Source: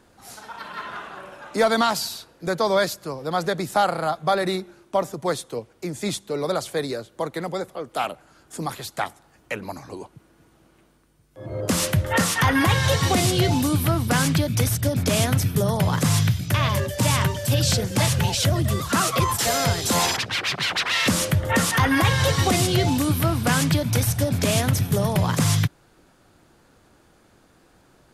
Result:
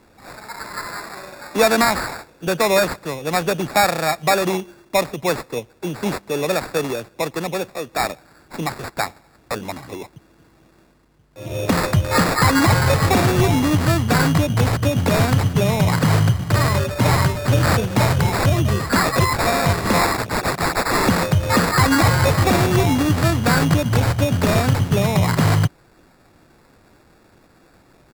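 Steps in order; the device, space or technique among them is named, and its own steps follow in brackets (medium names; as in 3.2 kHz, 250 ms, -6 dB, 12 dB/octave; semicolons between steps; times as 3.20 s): crushed at another speed (playback speed 0.8×; sample-and-hold 18×; playback speed 1.25×); trim +4 dB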